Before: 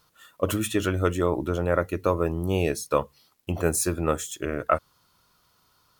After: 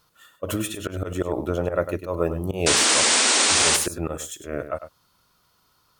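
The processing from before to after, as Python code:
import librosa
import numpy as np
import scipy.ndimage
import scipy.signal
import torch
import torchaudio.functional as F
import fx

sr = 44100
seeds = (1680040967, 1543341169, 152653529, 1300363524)

p1 = fx.dynamic_eq(x, sr, hz=610.0, q=2.0, threshold_db=-36.0, ratio=4.0, max_db=6)
p2 = fx.auto_swell(p1, sr, attack_ms=130.0)
p3 = fx.spec_paint(p2, sr, seeds[0], shape='noise', start_s=2.66, length_s=1.11, low_hz=200.0, high_hz=9500.0, level_db=-19.0)
y = p3 + fx.echo_single(p3, sr, ms=100, db=-11.0, dry=0)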